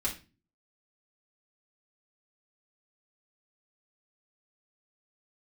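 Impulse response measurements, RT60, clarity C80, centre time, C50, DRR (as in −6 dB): 0.30 s, 16.5 dB, 17 ms, 10.0 dB, −6.0 dB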